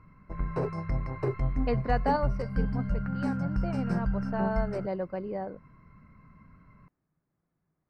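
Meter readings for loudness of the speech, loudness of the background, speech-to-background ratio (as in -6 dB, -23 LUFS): -34.5 LUFS, -32.0 LUFS, -2.5 dB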